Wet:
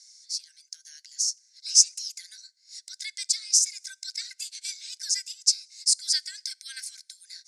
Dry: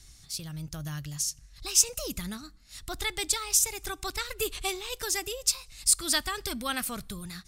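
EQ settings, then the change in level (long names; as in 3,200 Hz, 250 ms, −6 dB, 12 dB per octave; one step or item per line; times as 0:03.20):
Chebyshev high-pass with heavy ripple 1,500 Hz, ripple 9 dB
high-frequency loss of the air 62 metres
flat-topped bell 6,700 Hz +15 dB
−4.0 dB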